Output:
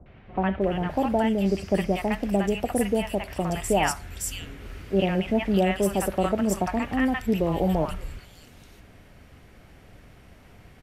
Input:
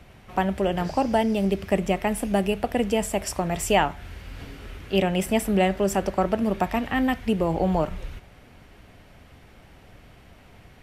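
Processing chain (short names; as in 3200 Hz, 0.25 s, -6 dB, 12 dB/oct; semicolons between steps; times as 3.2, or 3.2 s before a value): three bands offset in time lows, mids, highs 60/610 ms, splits 870/3300 Hz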